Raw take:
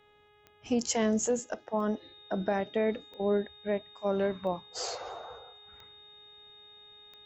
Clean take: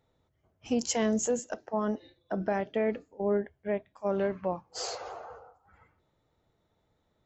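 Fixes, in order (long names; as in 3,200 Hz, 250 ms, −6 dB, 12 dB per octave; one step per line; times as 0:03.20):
click removal
hum removal 416.7 Hz, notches 9
notch filter 3,700 Hz, Q 30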